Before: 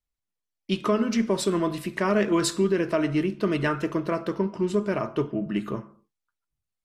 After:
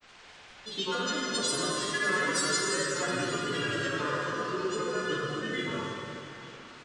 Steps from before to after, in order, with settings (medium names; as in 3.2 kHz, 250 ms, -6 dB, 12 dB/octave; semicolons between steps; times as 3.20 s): partials quantised in pitch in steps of 3 st; comb 7.4 ms, depth 88%; added noise white -46 dBFS; Chebyshev low-pass 8.1 kHz, order 6; bass shelf 130 Hz +5 dB; compression 4:1, threshold -31 dBFS, peak gain reduction 16.5 dB; bass shelf 330 Hz -6 dB; level-controlled noise filter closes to 2.6 kHz, open at -28.5 dBFS; granulator, pitch spread up and down by 3 st; band-passed feedback delay 61 ms, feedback 70%, band-pass 1.2 kHz, level -4.5 dB; reverberation RT60 3.3 s, pre-delay 8 ms, DRR -2 dB